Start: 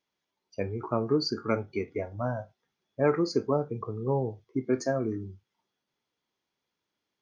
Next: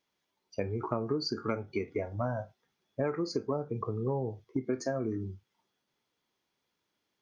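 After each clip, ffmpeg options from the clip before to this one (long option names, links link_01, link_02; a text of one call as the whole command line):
ffmpeg -i in.wav -af "acompressor=threshold=-31dB:ratio=5,volume=2.5dB" out.wav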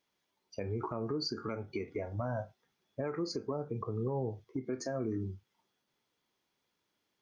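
ffmpeg -i in.wav -af "alimiter=level_in=2dB:limit=-24dB:level=0:latency=1:release=109,volume=-2dB" out.wav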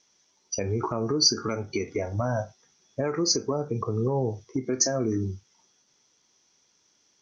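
ffmpeg -i in.wav -af "lowpass=frequency=5900:width_type=q:width=11,volume=8.5dB" out.wav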